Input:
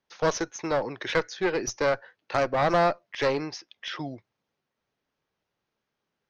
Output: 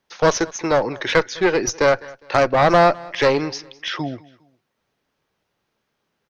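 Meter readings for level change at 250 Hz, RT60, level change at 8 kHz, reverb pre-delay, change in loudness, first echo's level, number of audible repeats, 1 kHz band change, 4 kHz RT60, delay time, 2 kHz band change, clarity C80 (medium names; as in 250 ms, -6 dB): +8.5 dB, no reverb, no reading, no reverb, +8.5 dB, -22.5 dB, 2, +8.5 dB, no reverb, 204 ms, +8.5 dB, no reverb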